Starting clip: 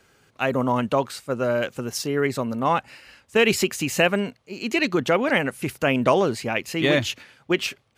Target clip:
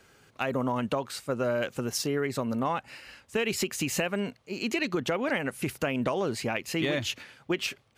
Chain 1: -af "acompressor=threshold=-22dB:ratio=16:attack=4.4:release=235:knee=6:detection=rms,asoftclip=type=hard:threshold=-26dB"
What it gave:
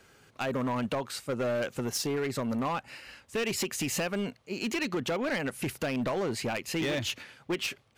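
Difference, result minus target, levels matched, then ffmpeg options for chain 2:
hard clip: distortion +37 dB
-af "acompressor=threshold=-22dB:ratio=16:attack=4.4:release=235:knee=6:detection=rms,asoftclip=type=hard:threshold=-15.5dB"

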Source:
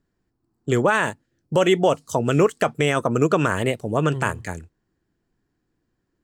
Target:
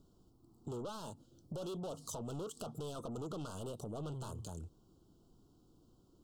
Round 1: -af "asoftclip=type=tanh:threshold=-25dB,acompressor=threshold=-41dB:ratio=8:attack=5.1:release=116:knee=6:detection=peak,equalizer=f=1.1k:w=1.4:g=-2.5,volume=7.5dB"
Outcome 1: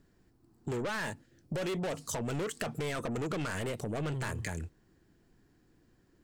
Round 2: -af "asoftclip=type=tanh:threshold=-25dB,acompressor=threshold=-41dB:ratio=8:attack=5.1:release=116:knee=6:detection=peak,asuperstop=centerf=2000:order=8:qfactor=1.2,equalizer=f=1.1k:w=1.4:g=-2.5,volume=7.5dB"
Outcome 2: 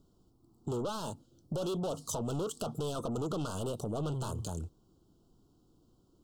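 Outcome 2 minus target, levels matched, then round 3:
compressor: peak gain reduction -8 dB
-af "asoftclip=type=tanh:threshold=-25dB,acompressor=threshold=-50dB:ratio=8:attack=5.1:release=116:knee=6:detection=peak,asuperstop=centerf=2000:order=8:qfactor=1.2,equalizer=f=1.1k:w=1.4:g=-2.5,volume=7.5dB"

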